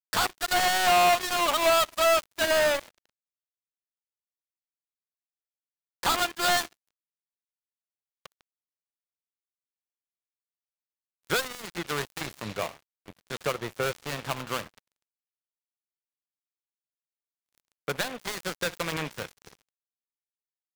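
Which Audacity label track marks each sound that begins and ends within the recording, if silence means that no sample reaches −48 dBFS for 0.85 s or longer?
6.030000	6.730000	sound
8.250000	8.410000	sound
11.250000	14.790000	sound
17.580000	19.620000	sound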